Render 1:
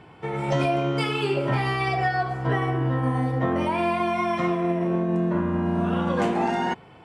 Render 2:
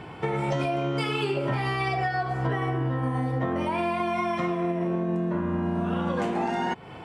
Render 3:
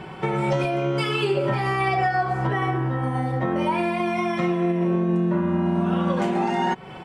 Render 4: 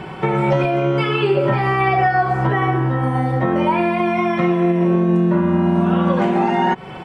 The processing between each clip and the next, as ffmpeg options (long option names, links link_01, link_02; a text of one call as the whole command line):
ffmpeg -i in.wav -af "acompressor=threshold=-32dB:ratio=6,volume=7.5dB" out.wav
ffmpeg -i in.wav -af "aecho=1:1:5.3:0.57,volume=2.5dB" out.wav
ffmpeg -i in.wav -filter_complex "[0:a]acrossover=split=3300[link_01][link_02];[link_02]acompressor=threshold=-56dB:ratio=4:attack=1:release=60[link_03];[link_01][link_03]amix=inputs=2:normalize=0,volume=6dB" out.wav